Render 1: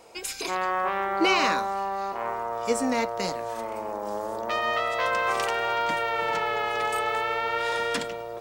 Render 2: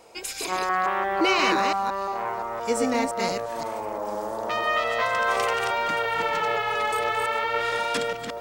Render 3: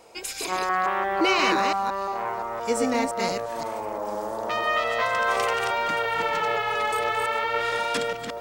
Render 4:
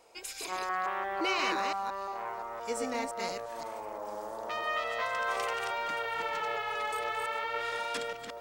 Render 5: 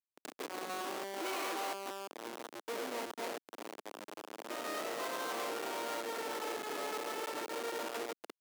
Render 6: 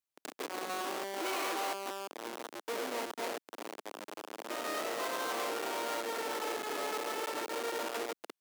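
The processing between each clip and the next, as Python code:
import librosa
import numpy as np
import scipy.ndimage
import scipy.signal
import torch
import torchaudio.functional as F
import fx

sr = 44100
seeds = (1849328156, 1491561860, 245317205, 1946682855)

y1 = fx.reverse_delay(x, sr, ms=173, wet_db=-3)
y2 = y1
y3 = fx.peak_eq(y2, sr, hz=150.0, db=-6.5, octaves=2.3)
y3 = y3 * 10.0 ** (-8.0 / 20.0)
y4 = fx.schmitt(y3, sr, flips_db=-32.5)
y4 = fx.leveller(y4, sr, passes=1)
y4 = scipy.signal.sosfilt(scipy.signal.butter(4, 300.0, 'highpass', fs=sr, output='sos'), y4)
y4 = y4 * 10.0 ** (-4.5 / 20.0)
y5 = fx.low_shelf(y4, sr, hz=150.0, db=-5.5)
y5 = y5 * 10.0 ** (3.0 / 20.0)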